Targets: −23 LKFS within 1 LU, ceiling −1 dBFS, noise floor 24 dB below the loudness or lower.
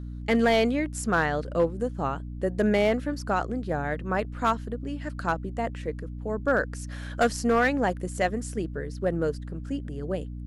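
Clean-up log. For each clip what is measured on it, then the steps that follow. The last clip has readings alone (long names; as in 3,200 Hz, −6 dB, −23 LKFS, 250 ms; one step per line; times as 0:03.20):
share of clipped samples 0.5%; peaks flattened at −15.0 dBFS; mains hum 60 Hz; hum harmonics up to 300 Hz; level of the hum −34 dBFS; integrated loudness −27.5 LKFS; sample peak −15.0 dBFS; target loudness −23.0 LKFS
→ clipped peaks rebuilt −15 dBFS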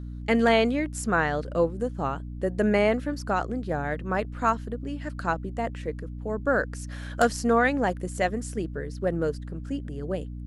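share of clipped samples 0.0%; mains hum 60 Hz; hum harmonics up to 300 Hz; level of the hum −34 dBFS
→ mains-hum notches 60/120/180/240/300 Hz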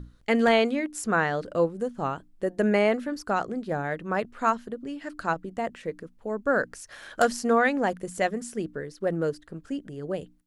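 mains hum none found; integrated loudness −27.5 LKFS; sample peak −6.5 dBFS; target loudness −23.0 LKFS
→ level +4.5 dB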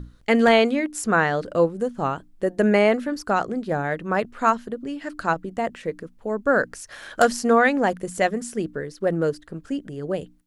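integrated loudness −23.0 LKFS; sample peak −2.0 dBFS; background noise floor −51 dBFS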